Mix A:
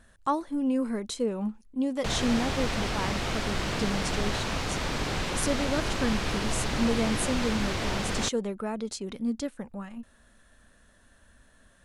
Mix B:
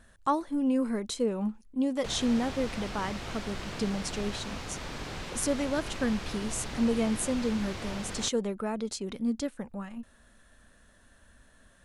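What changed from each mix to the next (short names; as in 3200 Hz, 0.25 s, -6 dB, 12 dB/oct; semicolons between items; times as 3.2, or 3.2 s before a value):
background -8.5 dB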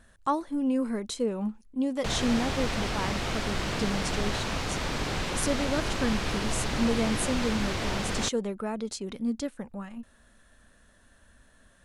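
background +8.0 dB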